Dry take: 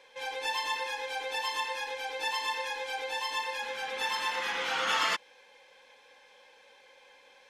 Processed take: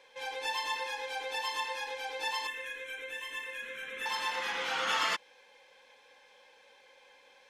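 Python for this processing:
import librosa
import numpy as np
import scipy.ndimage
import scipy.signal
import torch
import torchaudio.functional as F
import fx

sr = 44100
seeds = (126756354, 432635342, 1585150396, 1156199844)

y = fx.fixed_phaser(x, sr, hz=2000.0, stages=4, at=(2.47, 4.06))
y = F.gain(torch.from_numpy(y), -2.0).numpy()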